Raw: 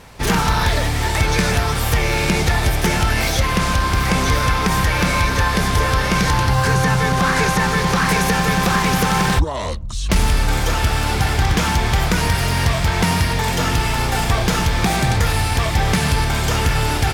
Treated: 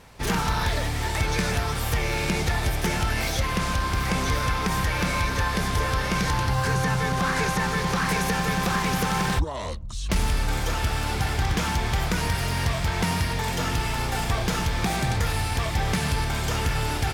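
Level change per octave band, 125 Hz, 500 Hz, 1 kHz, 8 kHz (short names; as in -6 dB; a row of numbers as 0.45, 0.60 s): -7.5, -7.5, -7.5, -7.5 dB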